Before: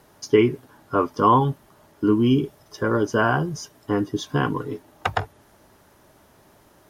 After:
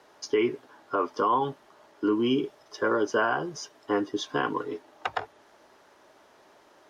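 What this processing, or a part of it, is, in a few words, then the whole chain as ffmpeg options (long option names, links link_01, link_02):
DJ mixer with the lows and highs turned down: -filter_complex "[0:a]acrossover=split=300 6800:gain=0.112 1 0.141[link_01][link_02][link_03];[link_01][link_02][link_03]amix=inputs=3:normalize=0,alimiter=limit=-15dB:level=0:latency=1:release=93"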